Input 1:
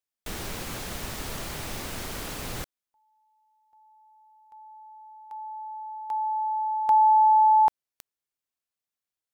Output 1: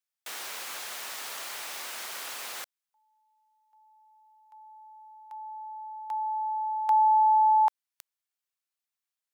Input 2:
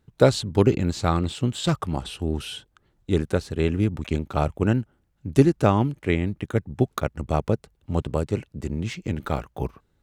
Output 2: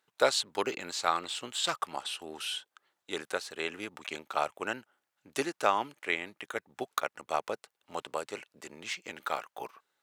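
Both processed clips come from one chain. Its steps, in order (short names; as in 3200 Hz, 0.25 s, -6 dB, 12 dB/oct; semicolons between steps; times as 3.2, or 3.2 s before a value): HPF 860 Hz 12 dB/oct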